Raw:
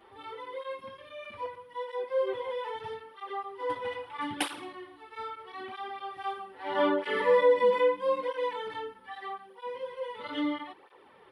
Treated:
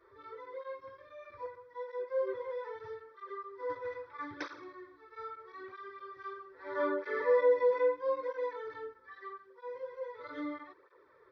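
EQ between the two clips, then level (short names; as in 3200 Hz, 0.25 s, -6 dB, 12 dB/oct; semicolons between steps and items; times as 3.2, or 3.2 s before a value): brick-wall FIR low-pass 6200 Hz; fixed phaser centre 790 Hz, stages 6; -3.5 dB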